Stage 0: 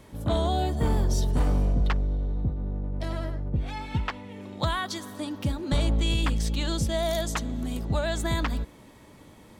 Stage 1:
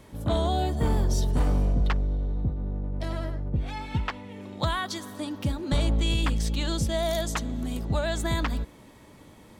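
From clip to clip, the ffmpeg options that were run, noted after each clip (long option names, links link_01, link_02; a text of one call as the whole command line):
ffmpeg -i in.wav -af anull out.wav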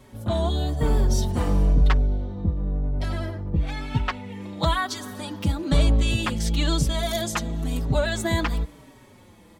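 ffmpeg -i in.wav -filter_complex "[0:a]dynaudnorm=framelen=110:gausssize=17:maxgain=4dB,asplit=2[link_01][link_02];[link_02]adelay=4.9,afreqshift=-1[link_03];[link_01][link_03]amix=inputs=2:normalize=1,volume=3dB" out.wav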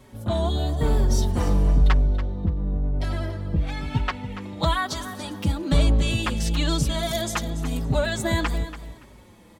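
ffmpeg -i in.wav -af "aecho=1:1:285|570:0.224|0.0448" out.wav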